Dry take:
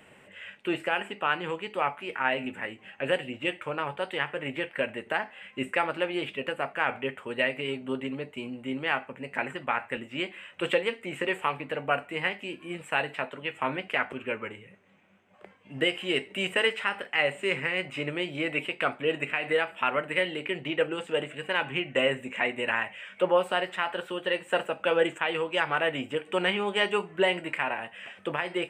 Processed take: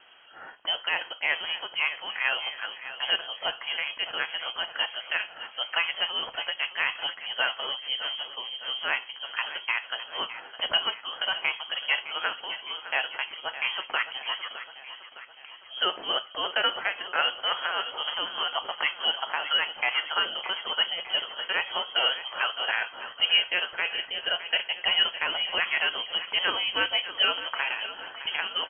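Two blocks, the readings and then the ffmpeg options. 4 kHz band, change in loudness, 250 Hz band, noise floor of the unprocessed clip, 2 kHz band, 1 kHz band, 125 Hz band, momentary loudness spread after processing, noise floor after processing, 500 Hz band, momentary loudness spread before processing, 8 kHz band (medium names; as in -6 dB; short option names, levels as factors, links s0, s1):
+10.5 dB, +2.0 dB, -17.0 dB, -55 dBFS, +1.0 dB, -1.0 dB, under -15 dB, 9 LU, -48 dBFS, -10.5 dB, 9 LU, under -30 dB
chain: -af "aecho=1:1:611|1222|1833|2444|3055|3666:0.224|0.128|0.0727|0.0415|0.0236|0.0135,lowpass=f=2900:t=q:w=0.5098,lowpass=f=2900:t=q:w=0.6013,lowpass=f=2900:t=q:w=0.9,lowpass=f=2900:t=q:w=2.563,afreqshift=-3400"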